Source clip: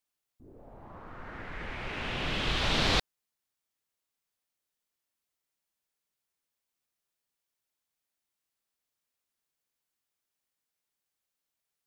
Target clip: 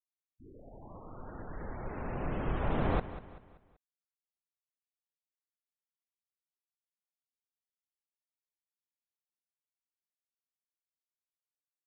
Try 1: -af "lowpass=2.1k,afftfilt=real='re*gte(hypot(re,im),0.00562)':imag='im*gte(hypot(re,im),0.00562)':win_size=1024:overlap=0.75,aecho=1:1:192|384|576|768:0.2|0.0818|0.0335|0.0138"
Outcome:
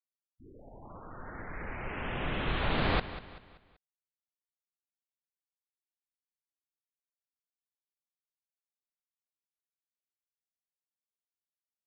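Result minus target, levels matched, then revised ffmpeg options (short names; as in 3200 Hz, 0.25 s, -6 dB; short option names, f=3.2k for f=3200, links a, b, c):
2000 Hz band +7.0 dB
-af "lowpass=1k,afftfilt=real='re*gte(hypot(re,im),0.00562)':imag='im*gte(hypot(re,im),0.00562)':win_size=1024:overlap=0.75,aecho=1:1:192|384|576|768:0.2|0.0818|0.0335|0.0138"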